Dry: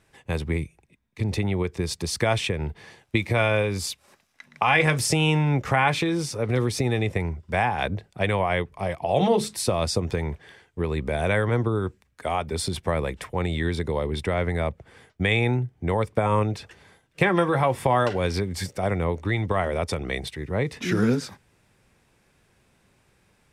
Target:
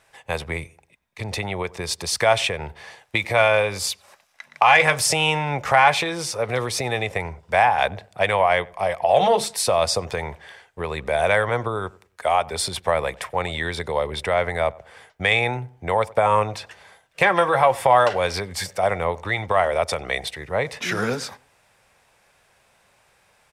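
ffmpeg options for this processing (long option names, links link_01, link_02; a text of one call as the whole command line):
ffmpeg -i in.wav -filter_complex "[0:a]acontrast=34,lowshelf=frequency=440:width_type=q:width=1.5:gain=-10.5,asplit=2[link_01][link_02];[link_02]adelay=95,lowpass=frequency=1200:poles=1,volume=-21dB,asplit=2[link_03][link_04];[link_04]adelay=95,lowpass=frequency=1200:poles=1,volume=0.35,asplit=2[link_05][link_06];[link_06]adelay=95,lowpass=frequency=1200:poles=1,volume=0.35[link_07];[link_01][link_03][link_05][link_07]amix=inputs=4:normalize=0" out.wav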